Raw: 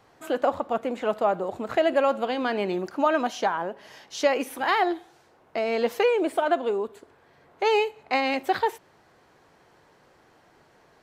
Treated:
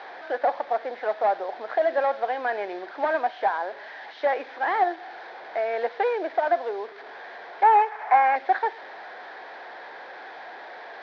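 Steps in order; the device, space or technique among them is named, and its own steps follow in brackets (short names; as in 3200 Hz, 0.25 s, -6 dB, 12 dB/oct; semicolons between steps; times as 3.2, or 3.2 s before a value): digital answering machine (BPF 340–3100 Hz; delta modulation 32 kbps, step -35.5 dBFS; speaker cabinet 460–3700 Hz, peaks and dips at 750 Hz +6 dB, 1200 Hz -5 dB, 1700 Hz +7 dB, 2800 Hz -10 dB); 7.63–8.36 graphic EQ 250/500/1000/2000/4000 Hz -5/-3/+12/+4/-8 dB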